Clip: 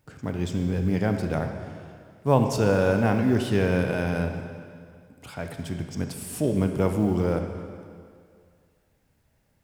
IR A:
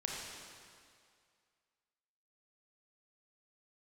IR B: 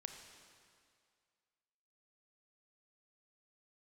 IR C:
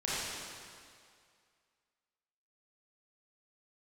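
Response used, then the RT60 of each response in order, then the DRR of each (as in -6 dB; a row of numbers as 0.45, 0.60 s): B; 2.2, 2.2, 2.2 s; -2.0, 5.0, -9.0 dB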